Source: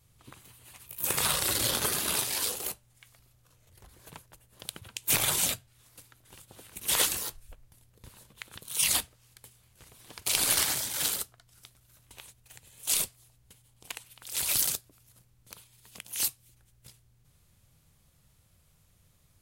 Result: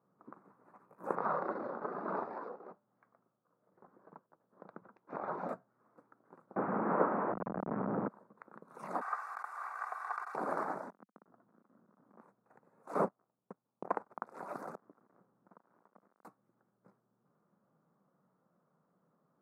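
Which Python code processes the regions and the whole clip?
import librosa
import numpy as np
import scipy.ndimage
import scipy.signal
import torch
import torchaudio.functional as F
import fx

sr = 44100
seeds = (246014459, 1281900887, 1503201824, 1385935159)

y = fx.chain(x, sr, fx.lowpass(hz=4500.0, slope=24),
    fx.tremolo_shape(shape='triangle', hz=1.2, depth_pct=65), at=(1.15, 5.49))
y = fx.chain(y, sr, fx.delta_mod(bps=16000, step_db=-27.0),
    fx.low_shelf(hz=230.0, db=8.0), at=(6.56, 8.08))
y = fx.chain(y, sr, fx.lower_of_two(delay_ms=2.6),
    fx.highpass(hz=1100.0, slope=24),
    fx.env_flatten(amount_pct=100), at=(9.01, 10.35))
y = fx.chain(y, sr, fx.dead_time(dead_ms=0.21),
    fx.peak_eq(hz=210.0, db=9.0, octaves=1.3), at=(10.9, 12.21))
y = fx.chain(y, sr, fx.high_shelf(hz=2300.0, db=-8.0),
    fx.leveller(passes=5), at=(12.95, 14.25))
y = fx.chain(y, sr, fx.dead_time(dead_ms=0.17),
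    fx.over_compress(threshold_db=-58.0, ratio=-0.5), at=(14.75, 16.25))
y = scipy.signal.sosfilt(scipy.signal.ellip(3, 1.0, 40, [190.0, 1300.0], 'bandpass', fs=sr, output='sos'), y)
y = fx.dynamic_eq(y, sr, hz=720.0, q=1.2, threshold_db=-52.0, ratio=4.0, max_db=4)
y = y * 10.0 ** (1.0 / 20.0)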